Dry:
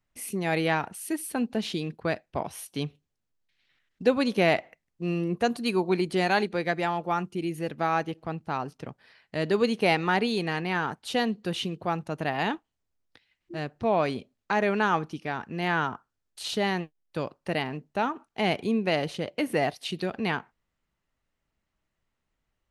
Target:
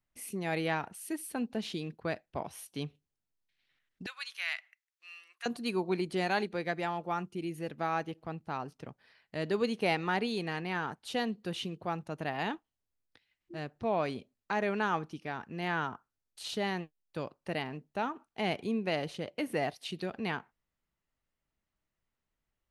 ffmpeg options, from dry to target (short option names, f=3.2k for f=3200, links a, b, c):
-filter_complex "[0:a]asettb=1/sr,asplit=3[a][b][c];[a]atrim=end=4.064[d];[b]atrim=start=4.06:end=5.46,asetpts=PTS-STARTPTS,afade=t=in:d=0.004:c=qsin,afade=t=out:st=1.396:d=0.004:c=qsin,highpass=f=1.4k:w=0.5412,highpass=f=1.4k:w=1.3066[e];[c]atrim=start=5.456[f];[d][e]acrossfade=d=0.004:c1=hsin:c2=qsin[g];[g][f]acrossfade=d=0.004:c1=qsin:c2=hsin,volume=-6.5dB"